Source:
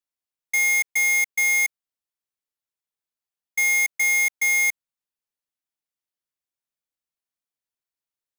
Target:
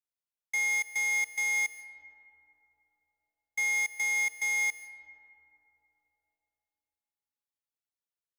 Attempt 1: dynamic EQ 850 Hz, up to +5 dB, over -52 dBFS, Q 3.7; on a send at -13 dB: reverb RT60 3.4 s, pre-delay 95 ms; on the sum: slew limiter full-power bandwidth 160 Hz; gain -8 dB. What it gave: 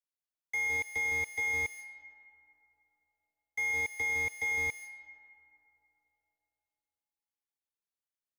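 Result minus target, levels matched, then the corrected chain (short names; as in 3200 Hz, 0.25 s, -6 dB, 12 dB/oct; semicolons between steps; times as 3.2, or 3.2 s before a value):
slew limiter: distortion +17 dB
dynamic EQ 850 Hz, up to +5 dB, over -52 dBFS, Q 3.7; on a send at -13 dB: reverb RT60 3.4 s, pre-delay 95 ms; on the sum: slew limiter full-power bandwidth 579.5 Hz; gain -8 dB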